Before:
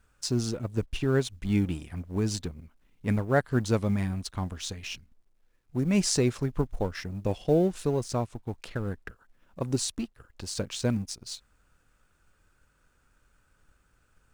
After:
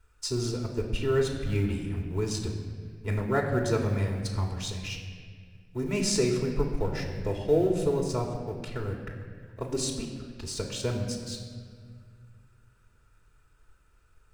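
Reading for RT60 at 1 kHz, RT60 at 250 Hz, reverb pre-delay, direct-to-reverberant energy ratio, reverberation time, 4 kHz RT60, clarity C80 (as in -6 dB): 1.7 s, 2.6 s, 3 ms, -0.5 dB, 1.9 s, 1.4 s, 7.0 dB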